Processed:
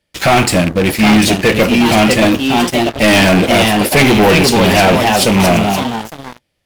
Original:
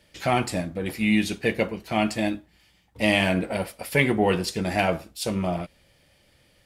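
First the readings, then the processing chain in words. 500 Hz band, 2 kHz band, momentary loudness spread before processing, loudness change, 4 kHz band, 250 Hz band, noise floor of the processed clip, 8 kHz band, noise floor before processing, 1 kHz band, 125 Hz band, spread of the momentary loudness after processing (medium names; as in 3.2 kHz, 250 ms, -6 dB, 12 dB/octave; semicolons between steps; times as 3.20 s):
+14.0 dB, +14.0 dB, 9 LU, +14.5 dB, +17.5 dB, +15.0 dB, -69 dBFS, +19.0 dB, -62 dBFS, +16.0 dB, +14.5 dB, 6 LU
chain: rattle on loud lows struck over -32 dBFS, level -25 dBFS; ever faster or slower copies 799 ms, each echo +2 st, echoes 3, each echo -6 dB; waveshaping leveller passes 5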